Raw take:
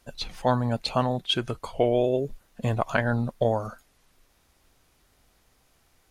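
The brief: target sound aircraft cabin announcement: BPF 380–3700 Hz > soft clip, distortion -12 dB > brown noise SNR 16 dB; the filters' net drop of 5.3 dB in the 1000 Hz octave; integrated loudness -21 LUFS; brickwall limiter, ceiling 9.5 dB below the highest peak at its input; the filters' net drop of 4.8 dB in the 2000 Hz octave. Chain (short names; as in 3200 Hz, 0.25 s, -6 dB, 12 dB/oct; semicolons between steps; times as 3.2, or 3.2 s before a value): bell 1000 Hz -6.5 dB; bell 2000 Hz -3.5 dB; limiter -20.5 dBFS; BPF 380–3700 Hz; soft clip -29.5 dBFS; brown noise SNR 16 dB; gain +18 dB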